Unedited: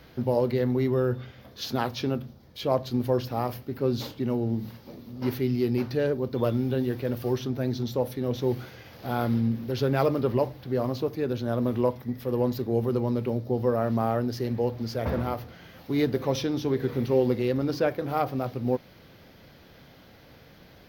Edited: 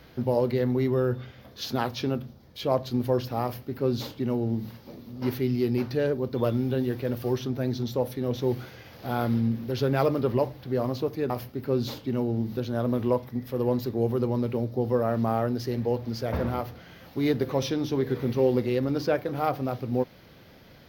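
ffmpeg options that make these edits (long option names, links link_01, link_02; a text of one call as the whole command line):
ffmpeg -i in.wav -filter_complex "[0:a]asplit=3[link_01][link_02][link_03];[link_01]atrim=end=11.302[link_04];[link_02]atrim=start=3.428:end=4.702[link_05];[link_03]atrim=start=11.298[link_06];[link_04][link_05]acrossfade=duration=0.004:curve1=hsin:curve2=hsin[link_07];[link_07][link_06]acrossfade=duration=0.004:curve1=hsin:curve2=hsin" out.wav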